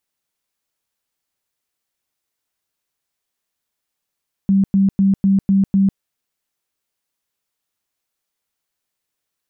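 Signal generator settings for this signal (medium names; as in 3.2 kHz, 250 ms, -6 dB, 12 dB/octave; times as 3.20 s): tone bursts 195 Hz, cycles 29, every 0.25 s, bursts 6, -10.5 dBFS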